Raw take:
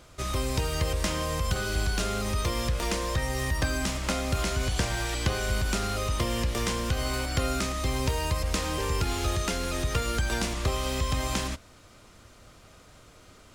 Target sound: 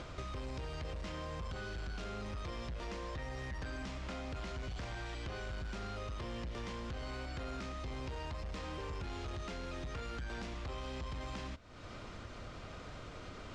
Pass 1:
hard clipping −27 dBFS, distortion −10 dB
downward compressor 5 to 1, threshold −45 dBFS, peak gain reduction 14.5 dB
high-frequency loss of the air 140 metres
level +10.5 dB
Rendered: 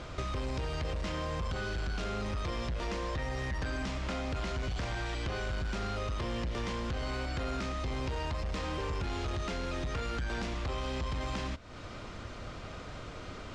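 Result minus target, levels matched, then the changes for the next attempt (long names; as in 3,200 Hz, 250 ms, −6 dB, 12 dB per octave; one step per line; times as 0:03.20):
downward compressor: peak gain reduction −7 dB
change: downward compressor 5 to 1, threshold −54 dBFS, peak gain reduction 21.5 dB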